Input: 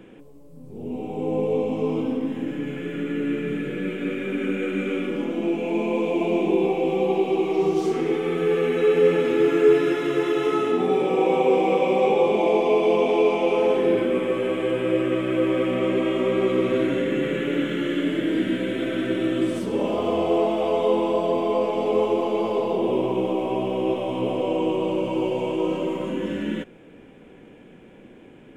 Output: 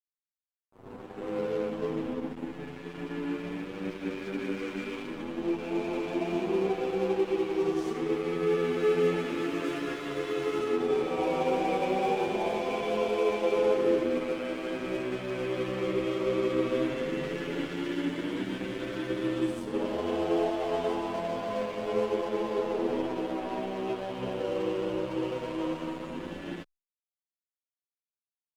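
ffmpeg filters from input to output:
-filter_complex "[0:a]aeval=exprs='sgn(val(0))*max(abs(val(0))-0.0237,0)':c=same,asplit=2[a][b];[b]adelay=8.8,afreqshift=0.34[c];[a][c]amix=inputs=2:normalize=1,volume=-2.5dB"

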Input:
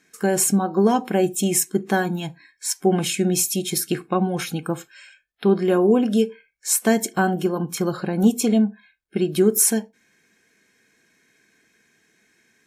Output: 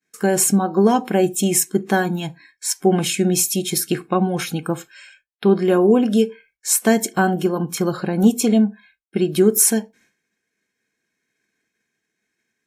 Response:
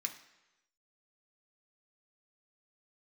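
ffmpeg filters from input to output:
-af "agate=range=-33dB:threshold=-51dB:ratio=3:detection=peak,volume=2.5dB"

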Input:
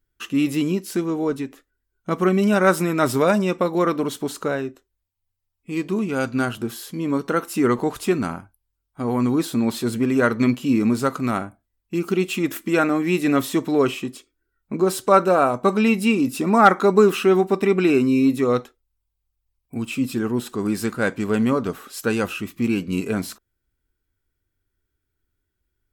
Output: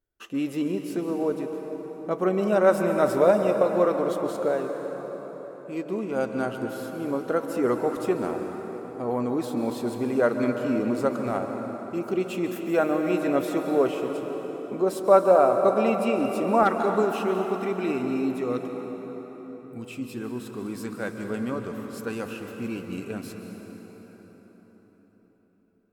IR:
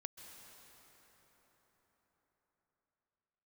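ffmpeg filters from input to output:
-filter_complex "[0:a]asetnsamples=n=441:p=0,asendcmd='16.63 equalizer g 3',equalizer=f=600:w=0.96:g=13[a];[1:a]atrim=start_sample=2205[b];[a][b]afir=irnorm=-1:irlink=0,volume=-6.5dB"

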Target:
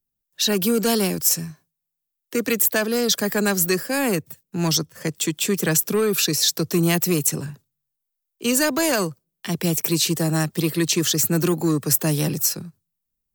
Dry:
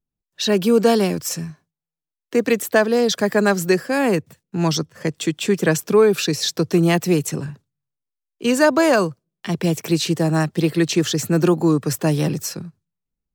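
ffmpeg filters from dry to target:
-filter_complex "[0:a]aemphasis=mode=production:type=50fm,acrossover=split=300|1600[a][b][c];[b]asoftclip=type=tanh:threshold=-20dB[d];[a][d][c]amix=inputs=3:normalize=0,volume=-2dB"

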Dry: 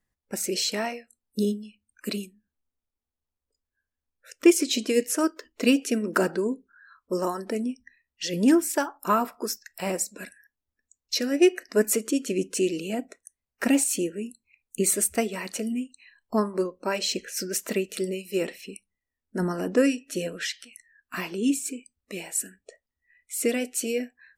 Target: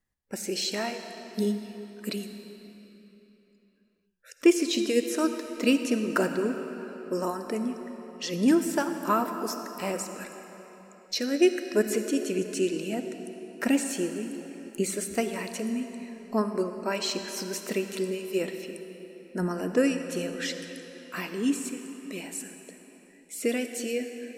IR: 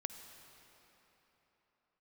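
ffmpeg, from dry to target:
-filter_complex "[0:a]acrossover=split=5900[a][b];[b]acompressor=threshold=-34dB:ratio=4:attack=1:release=60[c];[a][c]amix=inputs=2:normalize=0[d];[1:a]atrim=start_sample=2205[e];[d][e]afir=irnorm=-1:irlink=0"

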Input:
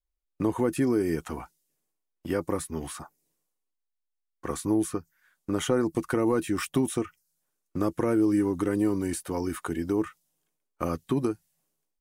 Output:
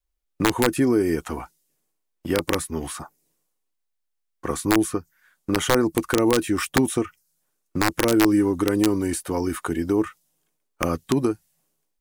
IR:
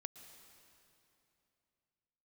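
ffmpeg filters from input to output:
-af "adynamicequalizer=threshold=0.00501:dfrequency=160:dqfactor=2.5:tfrequency=160:tqfactor=2.5:attack=5:release=100:ratio=0.375:range=2.5:mode=cutabove:tftype=bell,aeval=exprs='(mod(5.96*val(0)+1,2)-1)/5.96':c=same,volume=5.5dB"

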